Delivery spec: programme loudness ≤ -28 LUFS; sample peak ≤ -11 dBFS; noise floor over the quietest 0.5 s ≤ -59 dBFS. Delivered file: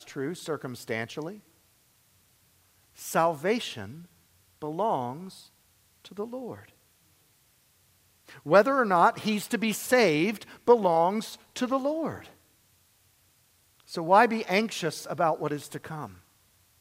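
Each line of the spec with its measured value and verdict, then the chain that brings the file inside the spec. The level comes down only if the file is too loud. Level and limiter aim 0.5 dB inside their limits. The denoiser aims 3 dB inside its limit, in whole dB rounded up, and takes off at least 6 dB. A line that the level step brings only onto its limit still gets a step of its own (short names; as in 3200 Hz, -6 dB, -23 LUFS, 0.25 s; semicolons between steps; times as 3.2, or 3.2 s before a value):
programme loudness -26.5 LUFS: fail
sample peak -5.5 dBFS: fail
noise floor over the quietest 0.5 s -65 dBFS: OK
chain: gain -2 dB; limiter -11.5 dBFS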